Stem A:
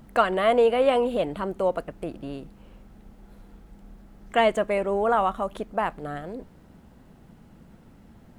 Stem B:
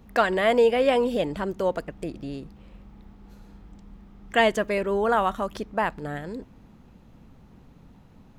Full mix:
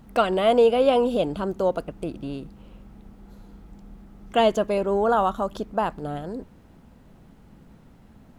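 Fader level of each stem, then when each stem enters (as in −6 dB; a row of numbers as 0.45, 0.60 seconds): −1.5, −4.0 decibels; 0.00, 0.00 seconds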